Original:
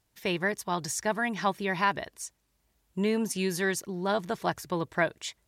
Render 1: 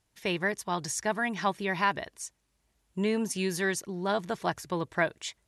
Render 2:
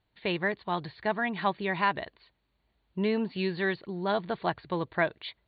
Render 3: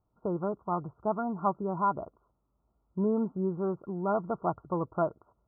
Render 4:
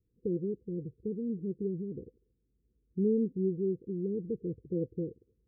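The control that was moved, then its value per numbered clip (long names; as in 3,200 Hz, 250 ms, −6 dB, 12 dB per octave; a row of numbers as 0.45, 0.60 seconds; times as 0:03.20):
Chebyshev low-pass filter, frequency: 12,000, 4,500, 1,400, 510 Hertz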